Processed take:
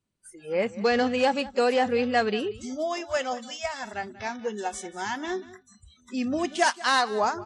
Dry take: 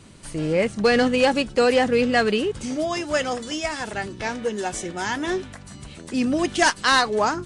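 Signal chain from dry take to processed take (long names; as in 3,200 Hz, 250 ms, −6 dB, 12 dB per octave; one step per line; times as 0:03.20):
noise reduction from a noise print of the clip's start 29 dB
dynamic equaliser 770 Hz, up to +5 dB, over −33 dBFS, Q 2
on a send: single-tap delay 187 ms −18.5 dB
on the sum: level −6 dB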